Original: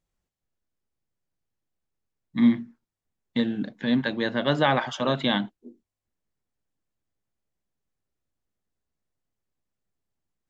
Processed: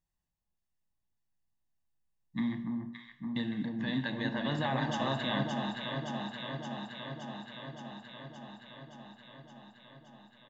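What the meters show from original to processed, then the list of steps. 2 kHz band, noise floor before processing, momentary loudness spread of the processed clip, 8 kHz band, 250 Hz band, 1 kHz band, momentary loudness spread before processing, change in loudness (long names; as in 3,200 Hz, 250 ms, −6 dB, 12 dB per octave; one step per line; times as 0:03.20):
−7.0 dB, below −85 dBFS, 20 LU, can't be measured, −8.5 dB, −6.5 dB, 10 LU, −10.5 dB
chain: comb filter 1.1 ms, depth 52%
brickwall limiter −15 dBFS, peak gain reduction 8 dB
delay that swaps between a low-pass and a high-pass 285 ms, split 1,300 Hz, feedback 86%, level −3 dB
reverb whose tail is shaped and stops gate 350 ms falling, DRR 10.5 dB
level −8 dB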